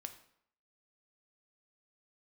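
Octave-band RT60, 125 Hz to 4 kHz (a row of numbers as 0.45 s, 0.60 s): 0.60 s, 0.65 s, 0.65 s, 0.70 s, 0.60 s, 0.55 s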